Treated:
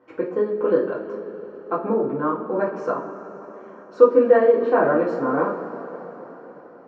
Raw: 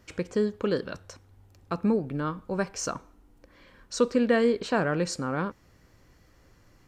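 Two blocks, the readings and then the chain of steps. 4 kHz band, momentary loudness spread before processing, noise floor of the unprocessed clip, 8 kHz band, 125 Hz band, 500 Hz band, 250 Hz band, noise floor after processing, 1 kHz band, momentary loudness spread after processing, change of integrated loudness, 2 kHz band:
below −10 dB, 13 LU, −60 dBFS, below −25 dB, −3.5 dB, +10.0 dB, +2.0 dB, −45 dBFS, +9.0 dB, 22 LU, +7.5 dB, +2.5 dB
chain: flat-topped band-pass 580 Hz, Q 0.67
coupled-rooms reverb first 0.33 s, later 4.6 s, from −18 dB, DRR −6 dB
level +4 dB

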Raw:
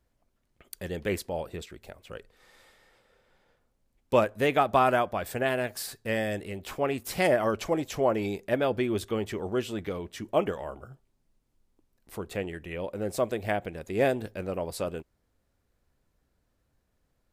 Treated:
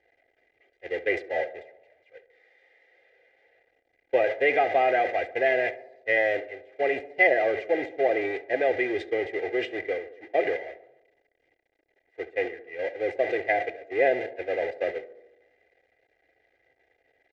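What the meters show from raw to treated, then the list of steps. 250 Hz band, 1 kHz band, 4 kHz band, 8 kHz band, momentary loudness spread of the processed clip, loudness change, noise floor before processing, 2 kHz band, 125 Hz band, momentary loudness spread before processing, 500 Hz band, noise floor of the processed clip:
−4.5 dB, +1.0 dB, −3.0 dB, below −20 dB, 11 LU, +2.5 dB, −75 dBFS, +7.5 dB, −16.0 dB, 17 LU, +3.0 dB, −72 dBFS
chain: converter with a step at zero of −25 dBFS
high-frequency loss of the air 120 metres
noise gate −27 dBFS, range −34 dB
in parallel at +0.5 dB: output level in coarse steps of 17 dB
on the sum: pair of resonant band-passes 1,100 Hz, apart 1.7 octaves
comb filter 2.5 ms, depth 94%
on a send: tape delay 70 ms, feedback 70%, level −13.5 dB, low-pass 1,300 Hz
on the sum: level +6.5 dB

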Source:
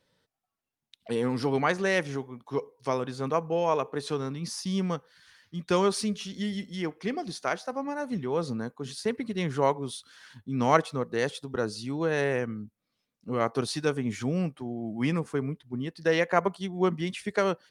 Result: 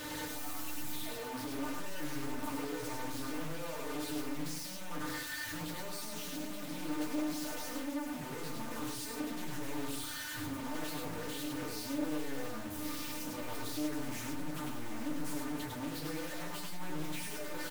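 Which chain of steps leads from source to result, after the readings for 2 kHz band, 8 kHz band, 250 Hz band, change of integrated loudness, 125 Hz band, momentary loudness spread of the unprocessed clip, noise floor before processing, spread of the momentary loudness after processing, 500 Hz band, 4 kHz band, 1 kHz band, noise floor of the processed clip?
−9.0 dB, −0.5 dB, −7.5 dB, −10.0 dB, −13.0 dB, 10 LU, −84 dBFS, 4 LU, −15.5 dB, −4.5 dB, −12.0 dB, −42 dBFS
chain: sign of each sample alone
high-shelf EQ 6,900 Hz +8.5 dB
tuned comb filter 300 Hz, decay 0.2 s, harmonics all, mix 90%
soft clipping −39.5 dBFS, distortion −11 dB
tuned comb filter 260 Hz, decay 1.1 s, mix 70%
on a send: single-tap delay 101 ms −3 dB
on the sum: feedback delay network reverb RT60 0.4 s, low-frequency decay 1.5×, high-frequency decay 0.4×, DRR 0 dB
highs frequency-modulated by the lows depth 0.51 ms
level +8 dB

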